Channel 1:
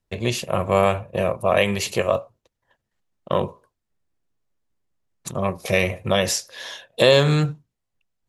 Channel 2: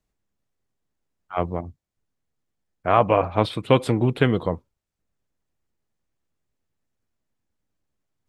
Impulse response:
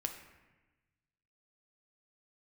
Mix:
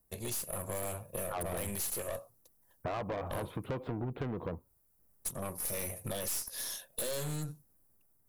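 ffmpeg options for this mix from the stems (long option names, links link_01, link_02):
-filter_complex "[0:a]aexciter=amount=8:drive=5.7:freq=9300,highshelf=frequency=4100:width_type=q:width=1.5:gain=11.5,aeval=exprs='(tanh(6.31*val(0)+0.65)-tanh(0.65))/6.31':channel_layout=same,volume=-9dB[link_01];[1:a]lowpass=1400,acompressor=threshold=-30dB:ratio=2.5,volume=2dB[link_02];[link_01][link_02]amix=inputs=2:normalize=0,dynaudnorm=framelen=180:gausssize=5:maxgain=4dB,aeval=exprs='(tanh(15.8*val(0)+0.2)-tanh(0.2))/15.8':channel_layout=same,acompressor=threshold=-36dB:ratio=3"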